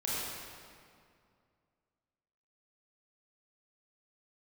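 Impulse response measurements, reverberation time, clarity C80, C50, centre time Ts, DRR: 2.3 s, −2.0 dB, −4.5 dB, 152 ms, −8.0 dB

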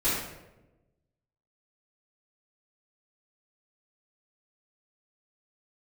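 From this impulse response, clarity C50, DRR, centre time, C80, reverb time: 0.0 dB, −15.5 dB, 67 ms, 3.5 dB, 1.0 s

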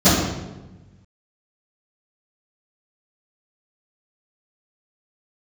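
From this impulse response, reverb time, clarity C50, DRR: 1.1 s, 1.0 dB, −18.0 dB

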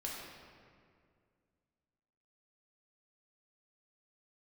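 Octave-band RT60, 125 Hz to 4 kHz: 2.6, 2.6, 2.3, 2.0, 1.8, 1.3 seconds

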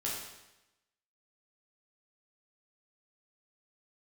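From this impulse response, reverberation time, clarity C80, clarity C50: 0.95 s, 4.0 dB, 1.5 dB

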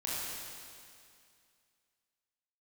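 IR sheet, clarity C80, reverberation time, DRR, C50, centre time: −1.5 dB, 2.3 s, −8.0 dB, −4.0 dB, 162 ms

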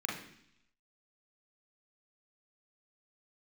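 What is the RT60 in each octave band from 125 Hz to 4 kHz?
0.90, 0.85, 0.65, 0.70, 0.85, 0.95 seconds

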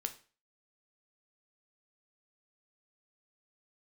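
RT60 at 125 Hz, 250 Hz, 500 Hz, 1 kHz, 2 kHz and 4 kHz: 0.40, 0.35, 0.40, 0.40, 0.40, 0.35 seconds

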